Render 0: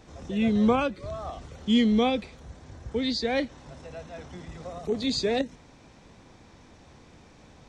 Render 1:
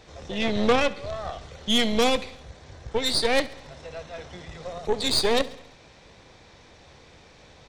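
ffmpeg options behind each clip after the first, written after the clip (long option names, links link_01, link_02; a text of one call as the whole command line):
ffmpeg -i in.wav -af "equalizer=frequency=250:width_type=o:width=1:gain=-6,equalizer=frequency=500:width_type=o:width=1:gain=5,equalizer=frequency=2000:width_type=o:width=1:gain=4,equalizer=frequency=4000:width_type=o:width=1:gain=7,aeval=exprs='0.335*(cos(1*acos(clip(val(0)/0.335,-1,1)))-cos(1*PI/2))+0.0531*(cos(4*acos(clip(val(0)/0.335,-1,1)))-cos(4*PI/2))+0.0841*(cos(6*acos(clip(val(0)/0.335,-1,1)))-cos(6*PI/2))':channel_layout=same,aecho=1:1:68|136|204|272|340:0.112|0.0662|0.0391|0.023|0.0136" out.wav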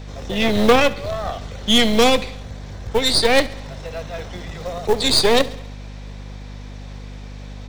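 ffmpeg -i in.wav -filter_complex "[0:a]acrossover=split=110|550|7700[link_01][link_02][link_03][link_04];[link_02]acrusher=bits=4:mode=log:mix=0:aa=0.000001[link_05];[link_01][link_05][link_03][link_04]amix=inputs=4:normalize=0,aeval=exprs='val(0)+0.01*(sin(2*PI*50*n/s)+sin(2*PI*2*50*n/s)/2+sin(2*PI*3*50*n/s)/3+sin(2*PI*4*50*n/s)/4+sin(2*PI*5*50*n/s)/5)':channel_layout=same,volume=7dB" out.wav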